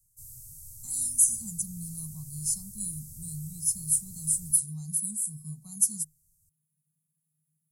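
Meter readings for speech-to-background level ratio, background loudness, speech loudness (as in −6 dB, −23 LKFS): 17.0 dB, −44.5 LKFS, −27.5 LKFS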